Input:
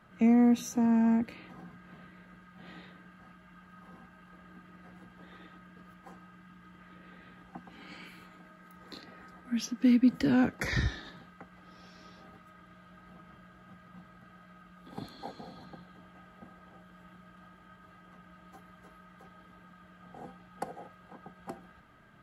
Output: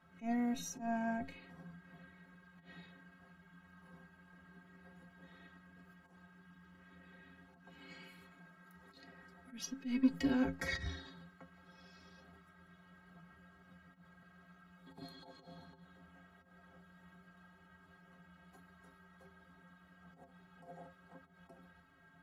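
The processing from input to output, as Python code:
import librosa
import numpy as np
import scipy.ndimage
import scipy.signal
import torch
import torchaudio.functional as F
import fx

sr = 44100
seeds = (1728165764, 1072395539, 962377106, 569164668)

y = fx.auto_swell(x, sr, attack_ms=116.0)
y = fx.cheby_harmonics(y, sr, harmonics=(6,), levels_db=(-25,), full_scale_db=-14.5)
y = fx.stiff_resonator(y, sr, f0_hz=80.0, decay_s=0.34, stiffness=0.03)
y = y * 10.0 ** (3.0 / 20.0)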